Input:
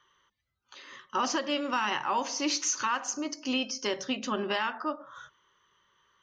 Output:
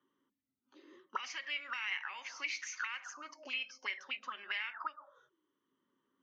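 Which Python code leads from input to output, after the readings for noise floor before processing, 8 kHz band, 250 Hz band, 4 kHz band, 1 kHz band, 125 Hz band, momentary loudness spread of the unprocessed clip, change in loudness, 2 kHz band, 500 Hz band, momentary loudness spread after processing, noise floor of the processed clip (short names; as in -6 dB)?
-82 dBFS, -17.0 dB, -29.0 dB, -9.0 dB, -14.0 dB, under -30 dB, 16 LU, -9.5 dB, -3.5 dB, -23.5 dB, 7 LU, under -85 dBFS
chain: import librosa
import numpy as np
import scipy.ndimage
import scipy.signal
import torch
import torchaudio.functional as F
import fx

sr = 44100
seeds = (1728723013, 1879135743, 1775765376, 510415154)

y = fx.auto_wah(x, sr, base_hz=260.0, top_hz=2200.0, q=12.0, full_db=-27.0, direction='up')
y = fx.high_shelf(y, sr, hz=2800.0, db=11.5)
y = fx.band_squash(y, sr, depth_pct=40)
y = y * librosa.db_to_amplitude(4.0)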